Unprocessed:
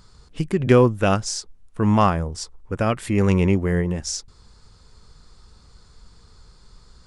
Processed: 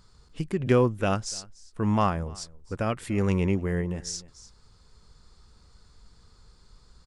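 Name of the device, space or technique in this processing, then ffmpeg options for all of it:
ducked delay: -filter_complex "[0:a]asplit=3[s0][s1][s2];[s1]adelay=294,volume=0.422[s3];[s2]apad=whole_len=324354[s4];[s3][s4]sidechaincompress=threshold=0.0251:ratio=10:attack=16:release=1090[s5];[s0][s5]amix=inputs=2:normalize=0,volume=0.473"

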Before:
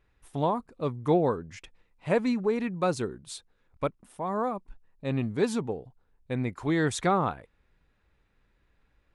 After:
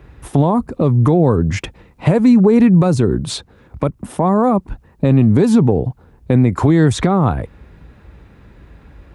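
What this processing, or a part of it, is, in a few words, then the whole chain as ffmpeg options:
mastering chain: -filter_complex "[0:a]highpass=f=46:w=0.5412,highpass=f=46:w=1.3066,equalizer=f=470:t=o:w=0.77:g=-2,acrossover=split=130|6000[s0][s1][s2];[s0]acompressor=threshold=0.00708:ratio=4[s3];[s1]acompressor=threshold=0.0178:ratio=4[s4];[s2]acompressor=threshold=0.00251:ratio=4[s5];[s3][s4][s5]amix=inputs=3:normalize=0,acompressor=threshold=0.0158:ratio=3,tiltshelf=f=940:g=6.5,alimiter=level_in=23.7:limit=0.891:release=50:level=0:latency=1,volume=0.708"

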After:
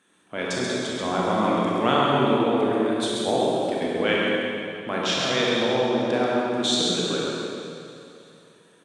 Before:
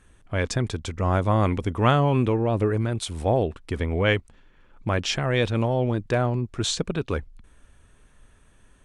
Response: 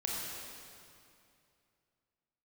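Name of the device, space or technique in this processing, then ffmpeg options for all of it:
PA in a hall: -filter_complex "[0:a]highpass=f=190:w=0.5412,highpass=f=190:w=1.3066,equalizer=f=3600:t=o:w=0.26:g=8,aecho=1:1:135:0.531,aecho=1:1:310|620|930|1240|1550:0.0891|0.0535|0.0321|0.0193|0.0116[s0];[1:a]atrim=start_sample=2205[s1];[s0][s1]afir=irnorm=-1:irlink=0,volume=0.75"

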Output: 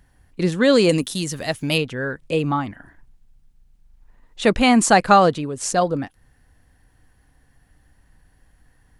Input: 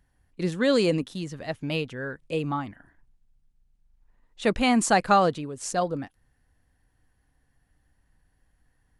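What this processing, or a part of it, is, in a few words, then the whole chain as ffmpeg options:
parallel compression: -filter_complex "[0:a]asplit=2[s0][s1];[s1]acompressor=threshold=0.00891:ratio=6,volume=0.708[s2];[s0][s2]amix=inputs=2:normalize=0,asettb=1/sr,asplit=3[s3][s4][s5];[s3]atrim=end=0.894[s6];[s4]atrim=start=0.89:end=1.78,asetpts=PTS-STARTPTS,afade=t=in:d=0.004:c=qsin,afade=t=out:st=0.886:d=0.004:c=qsin,aemphasis=mode=production:type=75fm[s7];[s5]atrim=start=1.776[s8];[s6][s7]acrossfade=d=0.004:c1=hsin:c2=qsin[s9];[s9][s8]acrossfade=d=0.004:c1=qsin:c2=hsin,volume=2"

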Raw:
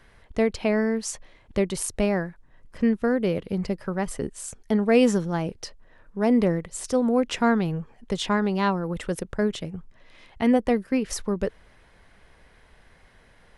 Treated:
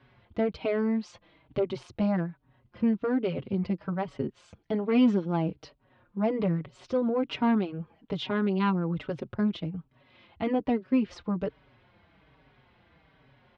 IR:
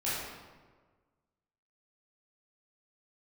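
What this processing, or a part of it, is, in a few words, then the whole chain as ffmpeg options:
barber-pole flanger into a guitar amplifier: -filter_complex "[0:a]asplit=2[s0][s1];[s1]adelay=4.9,afreqshift=-1.2[s2];[s0][s2]amix=inputs=2:normalize=1,asoftclip=type=tanh:threshold=0.158,highpass=79,equalizer=f=130:t=q:w=4:g=8,equalizer=f=290:t=q:w=4:g=5,equalizer=f=470:t=q:w=4:g=-3,equalizer=f=1800:t=q:w=4:g=-7,lowpass=f=3800:w=0.5412,lowpass=f=3800:w=1.3066"

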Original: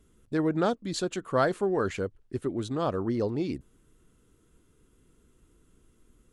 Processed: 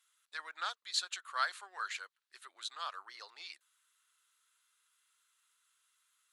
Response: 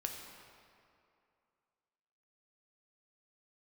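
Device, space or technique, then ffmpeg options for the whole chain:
headphones lying on a table: -af "highpass=f=1200:w=0.5412,highpass=f=1200:w=1.3066,equalizer=f=4000:t=o:w=0.38:g=7,volume=0.794"

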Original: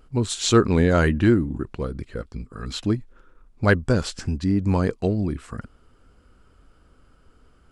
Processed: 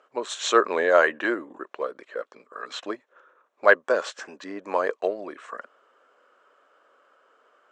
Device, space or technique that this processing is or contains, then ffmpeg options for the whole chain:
phone speaker on a table: -af "highpass=f=480:w=0.5412,highpass=f=480:w=1.3066,equalizer=f=590:t=q:w=4:g=7,equalizer=f=1100:t=q:w=4:g=7,equalizer=f=1700:t=q:w=4:g=6,equalizer=f=4800:t=q:w=4:g=-10,lowpass=f=6800:w=0.5412,lowpass=f=6800:w=1.3066,lowshelf=f=360:g=7.5,volume=0.891"

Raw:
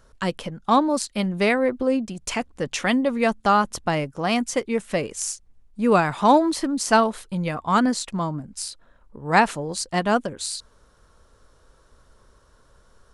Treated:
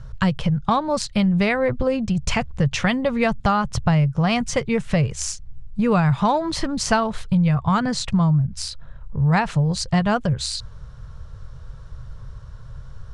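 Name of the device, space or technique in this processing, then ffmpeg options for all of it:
jukebox: -af "lowpass=5600,lowshelf=f=190:t=q:w=3:g=13,acompressor=threshold=0.0708:ratio=4,volume=2.11"

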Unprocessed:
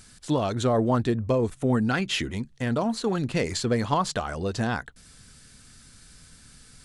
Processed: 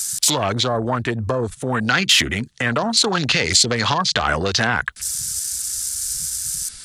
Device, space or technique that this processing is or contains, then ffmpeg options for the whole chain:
mastering chain: -filter_complex "[0:a]highpass=f=43:p=1,equalizer=f=2400:t=o:w=0.5:g=-3,acrossover=split=130|450[s0][s1][s2];[s0]acompressor=threshold=0.0141:ratio=4[s3];[s1]acompressor=threshold=0.0158:ratio=4[s4];[s2]acompressor=threshold=0.0178:ratio=4[s5];[s3][s4][s5]amix=inputs=3:normalize=0,acompressor=threshold=0.0178:ratio=3,asoftclip=type=tanh:threshold=0.0376,tiltshelf=f=1100:g=-9.5,asoftclip=type=hard:threshold=0.0708,alimiter=level_in=25.1:limit=0.891:release=50:level=0:latency=1,afwtdn=0.1,asettb=1/sr,asplit=3[s6][s7][s8];[s6]atrim=end=2.514[s9];[s7]atrim=start=2.51:end=4.19,asetpts=PTS-STARTPTS,afade=t=in:d=0.004:c=qsin,afade=t=out:st=1.676:d=0.004:c=qsin,lowpass=f=9800:w=0.5412,lowpass=f=9800:w=1.3066[s10];[s8]atrim=start=4.186[s11];[s9][s10]acrossfade=d=0.004:c1=hsin:c2=qsin[s12];[s12][s11]acrossfade=d=0.004:c1=qsin:c2=hsin,volume=0.631"

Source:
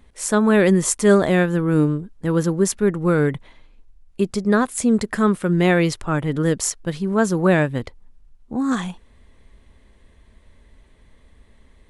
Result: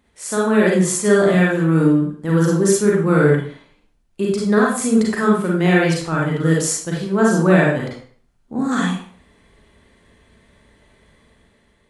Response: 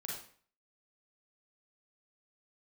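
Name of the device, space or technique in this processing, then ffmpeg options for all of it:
far laptop microphone: -filter_complex "[1:a]atrim=start_sample=2205[s0];[0:a][s0]afir=irnorm=-1:irlink=0,highpass=f=140:p=1,dynaudnorm=f=190:g=7:m=2"

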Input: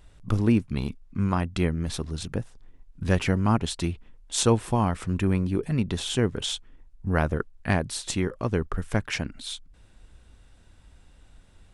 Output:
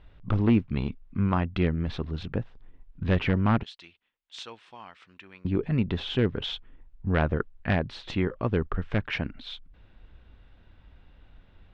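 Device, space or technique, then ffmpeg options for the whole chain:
synthesiser wavefolder: -filter_complex "[0:a]asettb=1/sr,asplit=3[s0][s1][s2];[s0]atrim=end=3.634[s3];[s1]atrim=start=3.63:end=5.45,asetpts=PTS-STARTPTS,afade=t=in:d=0.004:c=qsin,afade=t=out:st=1.816:d=0.004:c=qsin,aderivative[s4];[s2]atrim=start=5.446[s5];[s3][s4]acrossfade=d=0.004:c1=hsin:c2=qsin[s6];[s6][s5]acrossfade=d=0.004:c1=qsin:c2=hsin,aeval=exprs='0.224*(abs(mod(val(0)/0.224+3,4)-2)-1)':c=same,lowpass=f=3500:w=0.5412,lowpass=f=3500:w=1.3066"

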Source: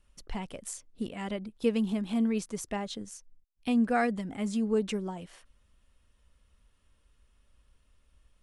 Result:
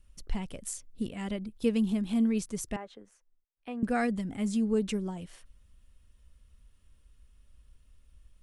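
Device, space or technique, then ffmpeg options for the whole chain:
smiley-face EQ: -filter_complex "[0:a]asettb=1/sr,asplit=3[s0][s1][s2];[s0]atrim=end=2.764[s3];[s1]atrim=start=2.76:end=3.83,asetpts=PTS-STARTPTS,afade=t=in:d=0.004:c=qsin,afade=t=out:st=1.066:d=0.004:c=qsin,acrossover=split=390 2200:gain=0.0891 1 0.0794[s4][s5][s6];[s4][s5][s6]amix=inputs=3:normalize=0[s7];[s2]atrim=start=3.826[s8];[s3][s7]acrossfade=d=0.004:c1=hsin:c2=qsin[s9];[s9][s8]acrossfade=d=0.004:c1=qsin:c2=hsin,lowshelf=f=160:g=8.5,equalizer=f=850:t=o:w=1.8:g=-3.5,highshelf=f=8400:g=6,volume=0.891"

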